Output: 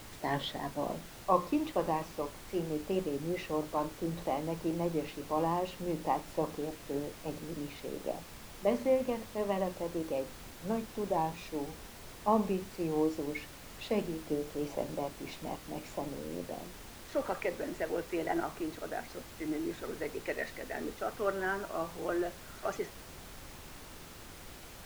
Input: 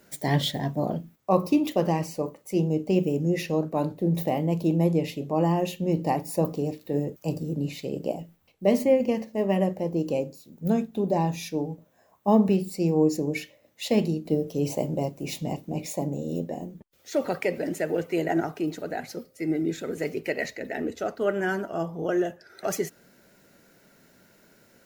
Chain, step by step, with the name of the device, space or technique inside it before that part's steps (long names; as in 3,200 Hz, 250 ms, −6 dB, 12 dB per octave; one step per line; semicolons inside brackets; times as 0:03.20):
horn gramophone (band-pass filter 230–3,900 Hz; parametric band 1,100 Hz +9.5 dB 0.77 octaves; tape wow and flutter; pink noise bed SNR 13 dB)
level −8.5 dB